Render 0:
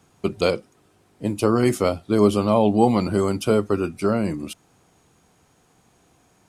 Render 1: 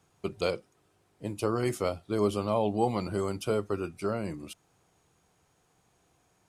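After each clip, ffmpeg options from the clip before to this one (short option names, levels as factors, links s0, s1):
-af "equalizer=f=240:t=o:w=0.56:g=-6.5,volume=0.376"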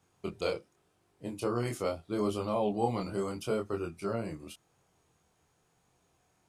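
-af "flanger=delay=22.5:depth=3.6:speed=0.83"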